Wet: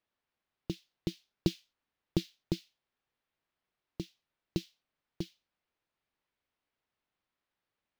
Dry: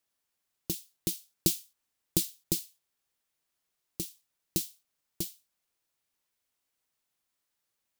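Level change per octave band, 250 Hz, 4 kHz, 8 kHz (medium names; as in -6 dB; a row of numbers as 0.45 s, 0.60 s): +1.5 dB, -7.0 dB, -20.5 dB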